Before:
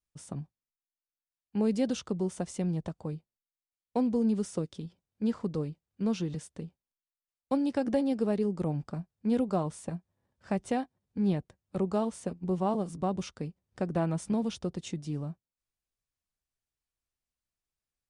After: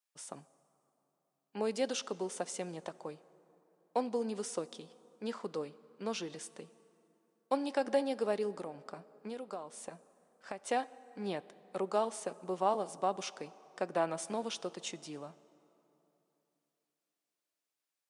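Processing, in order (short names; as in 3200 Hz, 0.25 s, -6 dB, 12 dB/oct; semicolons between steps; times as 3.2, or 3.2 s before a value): HPF 540 Hz 12 dB/oct; 8.53–10.6 compressor 6:1, threshold -42 dBFS, peak gain reduction 13.5 dB; plate-style reverb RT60 3.3 s, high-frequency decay 0.55×, DRR 18 dB; gain +2.5 dB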